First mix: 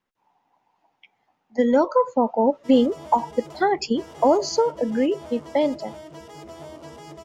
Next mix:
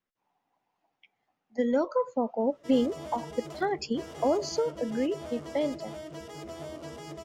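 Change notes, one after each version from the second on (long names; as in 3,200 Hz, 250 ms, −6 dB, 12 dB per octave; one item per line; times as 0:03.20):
speech −7.5 dB
master: add parametric band 910 Hz −7.5 dB 0.27 octaves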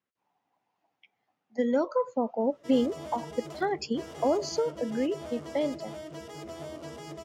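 master: add high-pass filter 61 Hz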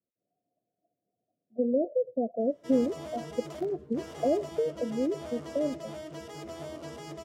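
speech: add Chebyshev low-pass filter 720 Hz, order 10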